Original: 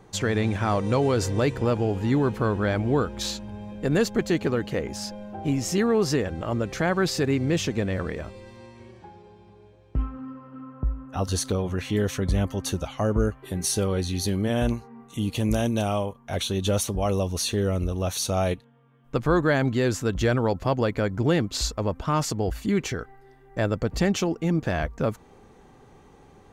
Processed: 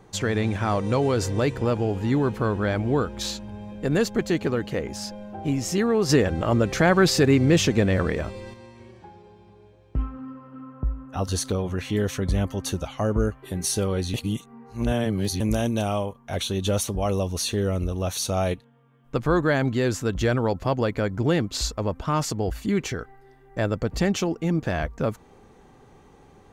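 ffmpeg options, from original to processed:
-filter_complex "[0:a]asettb=1/sr,asplit=3[a][b][c];[a]atrim=end=6.094[d];[b]atrim=start=6.09:end=8.54,asetpts=PTS-STARTPTS,afade=t=in:d=0.004:c=qsin,afade=t=out:st=2.446:d=0.004:c=qsin,acontrast=49[e];[c]atrim=start=8.536[f];[d][e]acrossfade=d=0.004:c1=hsin:c2=qsin[g];[g][f]acrossfade=d=0.004:c1=qsin:c2=hsin,asplit=3[h][i][j];[h]atrim=end=14.142[k];[i]atrim=start=14.138:end=15.402,asetpts=PTS-STARTPTS,areverse[l];[j]atrim=start=15.398[m];[k][l]acrossfade=d=0.004:c1=hsin:c2=hsin[n];[n][m]acrossfade=d=0.004:c1=hsin:c2=hsin"

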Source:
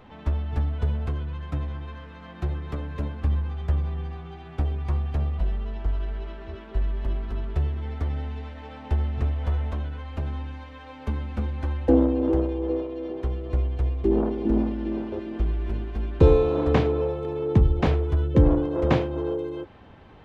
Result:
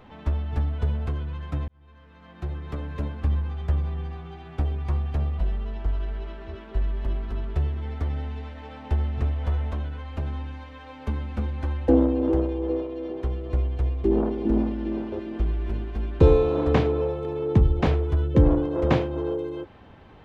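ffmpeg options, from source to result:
-filter_complex "[0:a]asplit=2[a][b];[a]atrim=end=1.68,asetpts=PTS-STARTPTS,afade=t=out:st=1.676:d=0.004:c=hsin[c];[b]atrim=start=1.68,asetpts=PTS-STARTPTS,afade=t=in:d=1.19[d];[c][d]concat=n=2:v=0:a=1"

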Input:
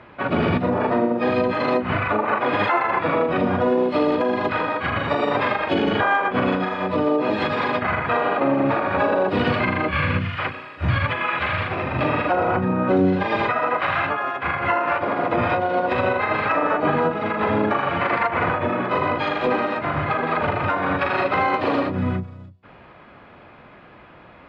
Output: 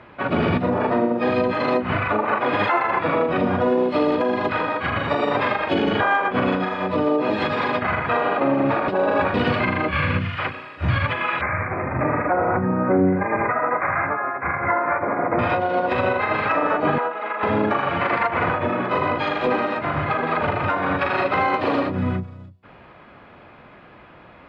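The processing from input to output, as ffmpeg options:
-filter_complex "[0:a]asettb=1/sr,asplit=3[a][b][c];[a]atrim=end=11.414[d];[b]atrim=start=11.41:end=15.39,asetpts=PTS-STARTPTS,afade=t=in:d=0.004:c=qsin,afade=t=out:st=3.976:d=0.004:c=qsin,asuperstop=centerf=4300:order=20:qfactor=0.83[e];[c]atrim=start=15.386[f];[d][e]acrossfade=d=0.004:c1=hsin:c2=qsin[g];[g][f]acrossfade=d=0.004:c1=qsin:c2=hsin,asettb=1/sr,asplit=3[h][i][j];[h]atrim=end=16.984[k];[i]atrim=start=16.98:end=17.43,asetpts=PTS-STARTPTS,afade=t=in:d=0.004:c=qsin,afade=t=out:st=0.446:d=0.004:c=qsin,highpass=640,lowpass=2.7k[l];[j]atrim=start=17.426[m];[k][l]acrossfade=d=0.004:c1=hsin:c2=qsin[n];[n][m]acrossfade=d=0.004:c1=qsin:c2=hsin,asplit=3[o][p][q];[o]atrim=end=8.882[r];[p]atrim=start=8.878:end=9.342,asetpts=PTS-STARTPTS,areverse[s];[q]atrim=start=9.338[t];[r][s]acrossfade=d=0.004:c1=hsin:c2=hsin[u];[u][t]acrossfade=d=0.004:c1=hsin:c2=hsin"

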